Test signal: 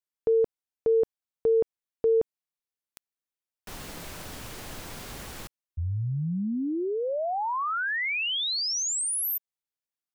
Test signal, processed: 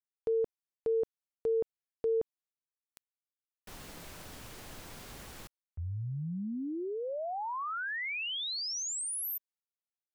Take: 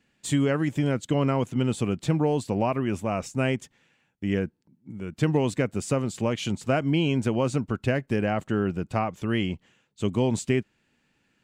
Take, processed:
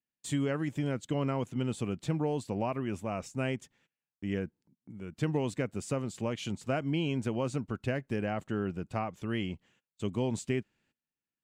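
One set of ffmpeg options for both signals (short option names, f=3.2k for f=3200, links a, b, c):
-af "agate=range=-22dB:threshold=-49dB:ratio=16:release=187:detection=rms,volume=-7.5dB"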